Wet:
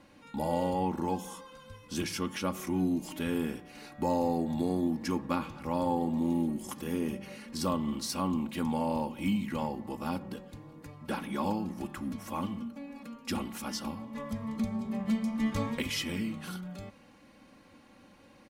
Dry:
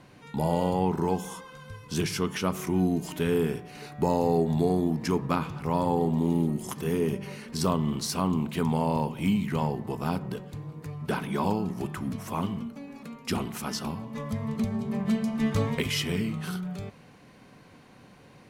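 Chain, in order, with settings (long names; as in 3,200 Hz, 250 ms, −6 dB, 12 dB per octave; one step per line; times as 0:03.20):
comb filter 3.6 ms, depth 67%
level −5.5 dB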